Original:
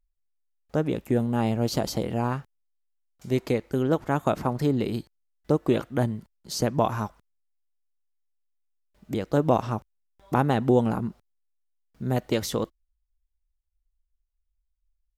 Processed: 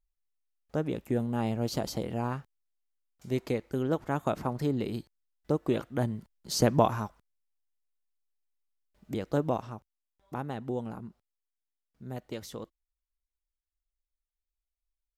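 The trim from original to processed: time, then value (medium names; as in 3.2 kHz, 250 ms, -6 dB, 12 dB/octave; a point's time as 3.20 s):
5.94 s -5.5 dB
6.73 s +2 dB
7.03 s -5 dB
9.36 s -5 dB
9.76 s -13.5 dB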